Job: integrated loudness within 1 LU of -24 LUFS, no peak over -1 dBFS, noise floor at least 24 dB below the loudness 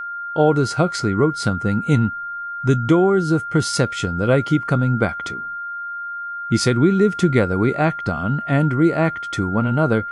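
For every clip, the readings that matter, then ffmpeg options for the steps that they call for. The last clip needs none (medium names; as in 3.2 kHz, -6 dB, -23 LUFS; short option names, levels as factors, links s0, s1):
steady tone 1.4 kHz; tone level -26 dBFS; loudness -19.5 LUFS; peak level -4.0 dBFS; loudness target -24.0 LUFS
-> -af "bandreject=f=1400:w=30"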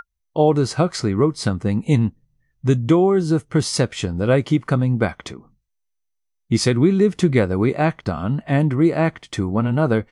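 steady tone not found; loudness -19.5 LUFS; peak level -4.5 dBFS; loudness target -24.0 LUFS
-> -af "volume=0.596"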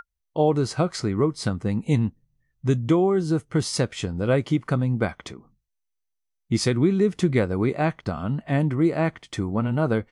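loudness -24.0 LUFS; peak level -9.0 dBFS; noise floor -79 dBFS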